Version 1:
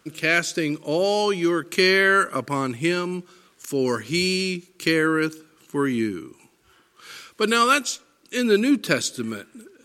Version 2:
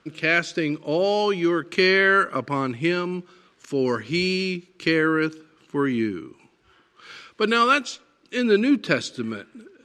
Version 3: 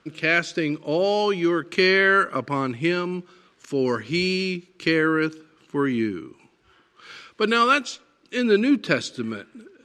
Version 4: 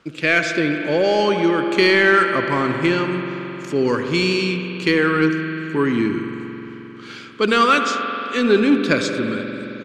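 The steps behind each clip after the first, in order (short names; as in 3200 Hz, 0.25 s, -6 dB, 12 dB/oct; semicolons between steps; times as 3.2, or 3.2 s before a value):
LPF 4200 Hz 12 dB/oct
nothing audible
echo 73 ms -20.5 dB; reverb RT60 3.8 s, pre-delay 77 ms, DRR 6 dB; in parallel at -6 dB: soft clip -18 dBFS, distortion -11 dB; on the sum: gain +1 dB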